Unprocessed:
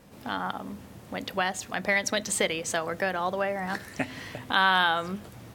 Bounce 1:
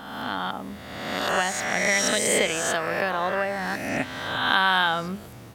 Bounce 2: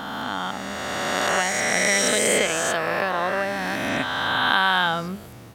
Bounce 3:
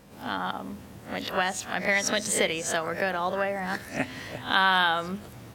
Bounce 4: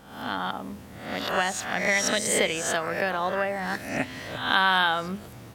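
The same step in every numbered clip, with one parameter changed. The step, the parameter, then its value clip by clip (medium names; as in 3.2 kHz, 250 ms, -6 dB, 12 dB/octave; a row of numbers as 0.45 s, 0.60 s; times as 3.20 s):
reverse spectral sustain, rising 60 dB in: 1.36 s, 3.18 s, 0.3 s, 0.65 s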